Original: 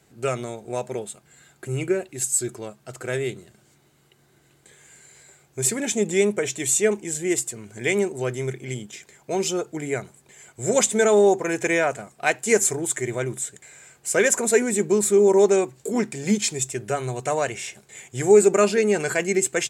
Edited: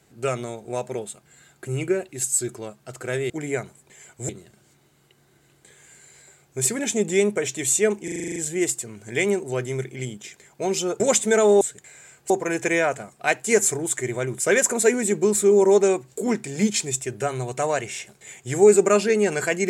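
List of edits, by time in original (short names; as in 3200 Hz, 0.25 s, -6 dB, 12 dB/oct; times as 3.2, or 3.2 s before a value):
7.05 stutter 0.04 s, 9 plays
9.69–10.68 move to 3.3
13.39–14.08 move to 11.29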